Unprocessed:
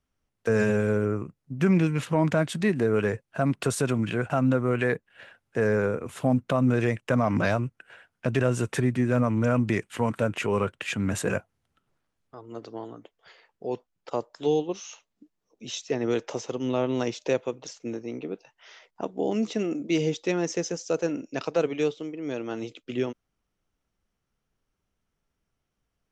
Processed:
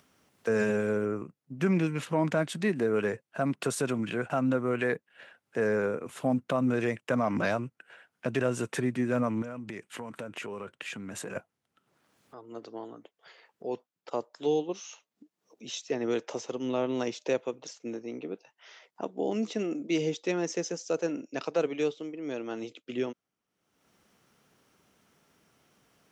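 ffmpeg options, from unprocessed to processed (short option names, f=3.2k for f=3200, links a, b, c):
-filter_complex "[0:a]asettb=1/sr,asplit=3[a][b][c];[a]atrim=end=9.424[d];[b]atrim=start=9.42:end=11.36,asetpts=PTS-STARTPTS,afade=t=in:d=0.004:c=qsin,afade=t=out:st=1.936:d=0.004:c=qsin,acompressor=threshold=-31dB:ratio=6:attack=3.2:release=140:knee=1:detection=peak[e];[c]atrim=start=11.356[f];[d][e]acrossfade=d=0.004:c1=hsin:c2=qsin[g];[g][f]acrossfade=d=0.004:c1=qsin:c2=hsin,highpass=170,acompressor=mode=upward:threshold=-46dB:ratio=2.5,volume=-3dB"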